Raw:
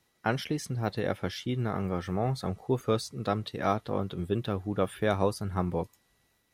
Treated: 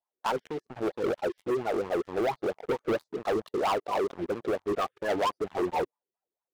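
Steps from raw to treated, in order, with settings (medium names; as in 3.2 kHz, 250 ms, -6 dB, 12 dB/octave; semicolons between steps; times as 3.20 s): coarse spectral quantiser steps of 30 dB; wah-wah 4.4 Hz 360–1000 Hz, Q 6.3; waveshaping leveller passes 5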